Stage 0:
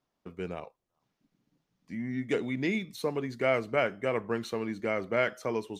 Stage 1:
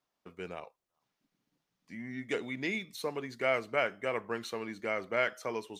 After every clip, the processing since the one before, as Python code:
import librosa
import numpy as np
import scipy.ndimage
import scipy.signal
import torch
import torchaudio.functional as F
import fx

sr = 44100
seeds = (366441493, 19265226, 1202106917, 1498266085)

y = fx.low_shelf(x, sr, hz=440.0, db=-10.0)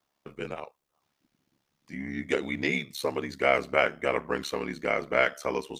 y = x * np.sin(2.0 * np.pi * 35.0 * np.arange(len(x)) / sr)
y = F.gain(torch.from_numpy(y), 9.0).numpy()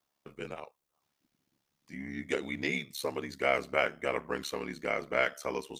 y = fx.high_shelf(x, sr, hz=5300.0, db=5.5)
y = F.gain(torch.from_numpy(y), -5.0).numpy()